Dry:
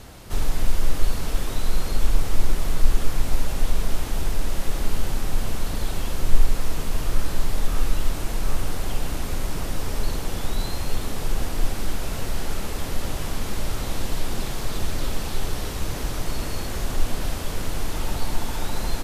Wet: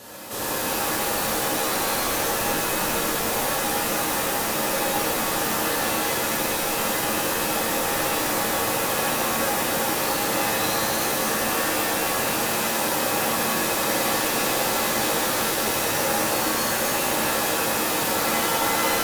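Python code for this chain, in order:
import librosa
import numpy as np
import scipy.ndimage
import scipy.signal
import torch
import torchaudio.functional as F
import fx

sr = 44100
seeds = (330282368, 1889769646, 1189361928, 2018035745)

y = scipy.signal.sosfilt(scipy.signal.butter(2, 230.0, 'highpass', fs=sr, output='sos'), x)
y = fx.high_shelf(y, sr, hz=10000.0, db=10.5)
y = fx.notch(y, sr, hz=2200.0, q=12.0)
y = fx.small_body(y, sr, hz=(540.0, 920.0, 1700.0), ring_ms=85, db=9)
y = fx.rev_shimmer(y, sr, seeds[0], rt60_s=2.0, semitones=7, shimmer_db=-2, drr_db=-5.0)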